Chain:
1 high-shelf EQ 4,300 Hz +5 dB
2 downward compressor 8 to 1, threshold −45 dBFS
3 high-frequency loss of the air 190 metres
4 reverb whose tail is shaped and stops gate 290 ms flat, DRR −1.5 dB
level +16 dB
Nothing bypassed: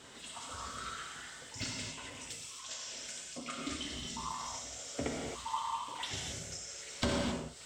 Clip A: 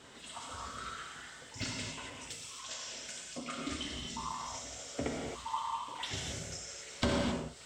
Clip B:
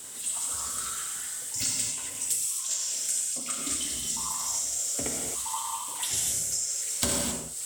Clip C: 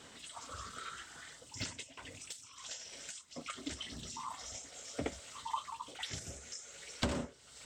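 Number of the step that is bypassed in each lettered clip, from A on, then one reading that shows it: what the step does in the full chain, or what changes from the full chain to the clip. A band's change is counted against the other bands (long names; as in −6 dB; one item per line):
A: 1, 8 kHz band −2.5 dB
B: 3, 8 kHz band +16.5 dB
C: 4, change in crest factor +4.0 dB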